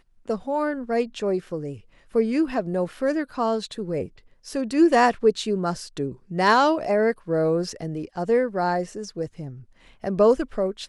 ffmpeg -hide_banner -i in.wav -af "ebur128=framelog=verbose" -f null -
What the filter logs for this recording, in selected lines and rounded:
Integrated loudness:
  I:         -23.8 LUFS
  Threshold: -34.2 LUFS
Loudness range:
  LRA:         4.9 LU
  Threshold: -43.8 LUFS
  LRA low:   -26.6 LUFS
  LRA high:  -21.6 LUFS